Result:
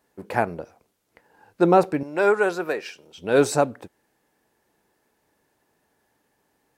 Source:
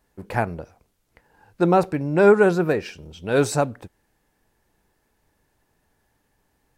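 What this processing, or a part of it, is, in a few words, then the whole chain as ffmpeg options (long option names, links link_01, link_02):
filter by subtraction: -filter_complex "[0:a]asplit=2[link_01][link_02];[link_02]lowpass=360,volume=-1[link_03];[link_01][link_03]amix=inputs=2:normalize=0,asettb=1/sr,asplit=3[link_04][link_05][link_06];[link_04]atrim=end=2.034[link_07];[link_05]atrim=start=2.03:end=3.18,asetpts=PTS-STARTPTS,afade=type=in:duration=0.004:curve=qsin,afade=type=out:start_time=1.146:duration=0.004:curve=qsin,highpass=frequency=910:poles=1[link_08];[link_06]atrim=start=3.176[link_09];[link_07][link_08]acrossfade=duration=0.004:curve1=hsin:curve2=qsin[link_10];[link_10][link_09]acrossfade=duration=0.004:curve1=qsin:curve2=hsin"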